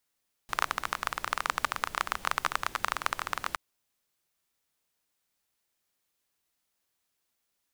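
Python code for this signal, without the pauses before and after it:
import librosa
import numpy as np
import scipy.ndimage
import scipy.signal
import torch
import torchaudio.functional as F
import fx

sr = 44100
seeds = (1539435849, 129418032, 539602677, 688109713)

y = fx.rain(sr, seeds[0], length_s=3.07, drops_per_s=20.0, hz=1200.0, bed_db=-15)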